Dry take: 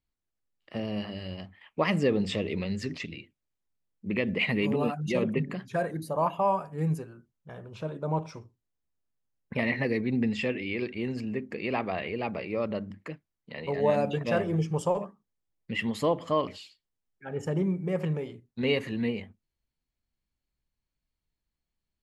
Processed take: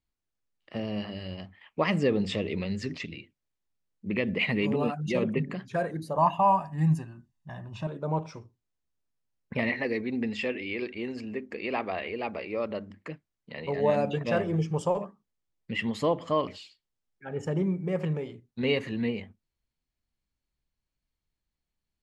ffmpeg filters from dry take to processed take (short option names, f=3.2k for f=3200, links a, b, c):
-filter_complex "[0:a]asettb=1/sr,asplit=3[a][b][c];[a]atrim=end=6.184[d];[b]atrim=start=6.18:end=7.87,asetpts=PTS-STARTPTS,afade=t=in:d=0.004:c=qsin,afade=t=out:st=1.686:d=0.004:c=qsin,aecho=1:1:1.1:0.94,atrim=end_sample=74529[e];[c]atrim=start=7.866[f];[d][e]acrossfade=d=0.004:c1=hsin:c2=qsin[g];[g][f]acrossfade=d=0.004:c1=qsin:c2=hsin,asettb=1/sr,asplit=3[h][i][j];[h]atrim=end=9.694[k];[i]atrim=start=9.69:end=13.04,asetpts=PTS-STARTPTS,afade=t=in:d=0.004:c=qsin,afade=t=out:st=3.346:d=0.004:c=qsin,equalizer=f=140:t=o:w=0.77:g=-14.5[l];[j]atrim=start=13.036[m];[k][l]acrossfade=d=0.004:c1=hsin:c2=qsin[n];[n][m]acrossfade=d=0.004:c1=qsin:c2=hsin,lowpass=8.3k"